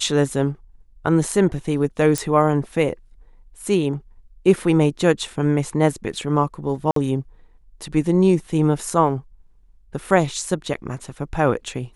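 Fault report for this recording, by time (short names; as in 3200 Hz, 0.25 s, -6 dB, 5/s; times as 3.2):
2.18 pop -7 dBFS
6.91–6.96 gap 53 ms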